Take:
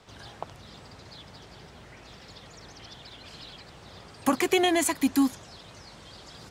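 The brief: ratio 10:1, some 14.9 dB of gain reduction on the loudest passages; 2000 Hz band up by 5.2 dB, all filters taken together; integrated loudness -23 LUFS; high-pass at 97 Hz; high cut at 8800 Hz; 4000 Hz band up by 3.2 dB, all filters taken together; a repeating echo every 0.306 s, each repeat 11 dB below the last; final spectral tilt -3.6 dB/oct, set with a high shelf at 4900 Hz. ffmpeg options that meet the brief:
-af "highpass=97,lowpass=8.8k,equalizer=f=2k:t=o:g=6,equalizer=f=4k:t=o:g=5,highshelf=f=4.9k:g=-7.5,acompressor=threshold=-33dB:ratio=10,aecho=1:1:306|612|918:0.282|0.0789|0.0221,volume=18.5dB"

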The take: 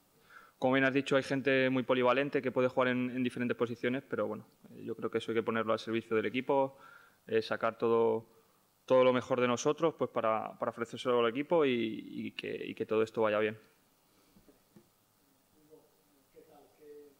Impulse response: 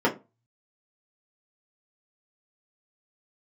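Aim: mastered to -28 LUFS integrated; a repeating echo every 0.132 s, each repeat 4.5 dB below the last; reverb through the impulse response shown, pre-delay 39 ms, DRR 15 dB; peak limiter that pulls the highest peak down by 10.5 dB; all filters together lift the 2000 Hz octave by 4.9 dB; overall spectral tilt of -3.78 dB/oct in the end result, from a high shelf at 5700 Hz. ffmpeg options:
-filter_complex "[0:a]equalizer=f=2k:t=o:g=7.5,highshelf=f=5.7k:g=-8.5,alimiter=limit=-22.5dB:level=0:latency=1,aecho=1:1:132|264|396|528|660|792|924|1056|1188:0.596|0.357|0.214|0.129|0.0772|0.0463|0.0278|0.0167|0.01,asplit=2[a][b];[1:a]atrim=start_sample=2205,adelay=39[c];[b][c]afir=irnorm=-1:irlink=0,volume=-30.5dB[d];[a][d]amix=inputs=2:normalize=0,volume=5dB"

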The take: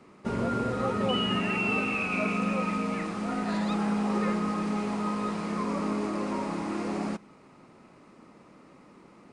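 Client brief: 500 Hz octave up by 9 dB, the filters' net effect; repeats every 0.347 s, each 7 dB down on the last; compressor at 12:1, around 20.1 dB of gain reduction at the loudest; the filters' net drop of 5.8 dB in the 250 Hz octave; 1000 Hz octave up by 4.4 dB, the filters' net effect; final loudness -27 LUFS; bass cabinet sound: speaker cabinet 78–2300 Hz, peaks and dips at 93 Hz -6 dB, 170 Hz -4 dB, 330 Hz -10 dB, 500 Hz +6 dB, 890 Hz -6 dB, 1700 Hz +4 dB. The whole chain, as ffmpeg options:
-af "equalizer=f=250:t=o:g=-6,equalizer=f=500:t=o:g=8,equalizer=f=1k:t=o:g=6,acompressor=threshold=-39dB:ratio=12,highpass=f=78:w=0.5412,highpass=f=78:w=1.3066,equalizer=f=93:t=q:w=4:g=-6,equalizer=f=170:t=q:w=4:g=-4,equalizer=f=330:t=q:w=4:g=-10,equalizer=f=500:t=q:w=4:g=6,equalizer=f=890:t=q:w=4:g=-6,equalizer=f=1.7k:t=q:w=4:g=4,lowpass=f=2.3k:w=0.5412,lowpass=f=2.3k:w=1.3066,aecho=1:1:347|694|1041|1388|1735:0.447|0.201|0.0905|0.0407|0.0183,volume=15.5dB"

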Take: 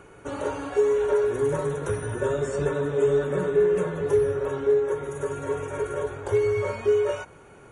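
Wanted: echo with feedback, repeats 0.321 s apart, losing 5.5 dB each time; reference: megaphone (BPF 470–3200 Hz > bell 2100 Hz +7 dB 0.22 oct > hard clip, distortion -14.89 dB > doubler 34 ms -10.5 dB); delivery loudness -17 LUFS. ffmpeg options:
-filter_complex "[0:a]highpass=470,lowpass=3.2k,equalizer=f=2.1k:t=o:w=0.22:g=7,aecho=1:1:321|642|963|1284|1605|1926|2247:0.531|0.281|0.149|0.079|0.0419|0.0222|0.0118,asoftclip=type=hard:threshold=-22.5dB,asplit=2[a][b];[b]adelay=34,volume=-10.5dB[c];[a][c]amix=inputs=2:normalize=0,volume=11.5dB"

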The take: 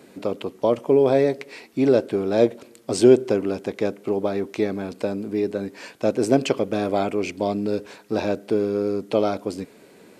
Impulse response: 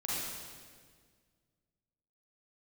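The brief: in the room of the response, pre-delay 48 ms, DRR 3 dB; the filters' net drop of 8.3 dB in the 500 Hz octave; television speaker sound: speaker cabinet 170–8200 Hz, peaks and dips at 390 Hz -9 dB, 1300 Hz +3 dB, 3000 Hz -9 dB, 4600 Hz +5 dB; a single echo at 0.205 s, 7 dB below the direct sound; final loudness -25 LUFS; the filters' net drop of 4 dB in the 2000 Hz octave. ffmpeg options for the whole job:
-filter_complex "[0:a]equalizer=f=500:t=o:g=-5,equalizer=f=2k:t=o:g=-4.5,aecho=1:1:205:0.447,asplit=2[a][b];[1:a]atrim=start_sample=2205,adelay=48[c];[b][c]afir=irnorm=-1:irlink=0,volume=-7.5dB[d];[a][d]amix=inputs=2:normalize=0,highpass=f=170:w=0.5412,highpass=f=170:w=1.3066,equalizer=f=390:t=q:w=4:g=-9,equalizer=f=1.3k:t=q:w=4:g=3,equalizer=f=3k:t=q:w=4:g=-9,equalizer=f=4.6k:t=q:w=4:g=5,lowpass=f=8.2k:w=0.5412,lowpass=f=8.2k:w=1.3066,volume=1dB"

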